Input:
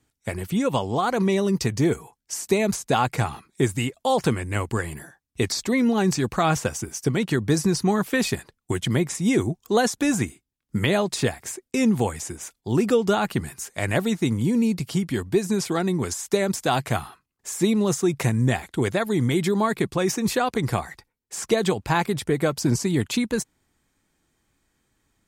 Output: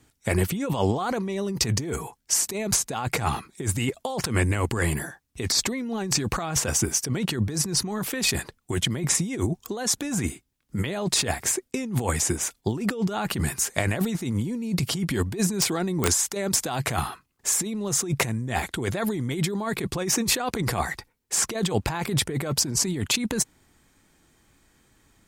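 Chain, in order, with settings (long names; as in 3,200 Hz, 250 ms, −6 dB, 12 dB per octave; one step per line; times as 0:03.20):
compressor whose output falls as the input rises −29 dBFS, ratio −1
0:15.54–0:16.09: wrap-around overflow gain 15.5 dB
level +3 dB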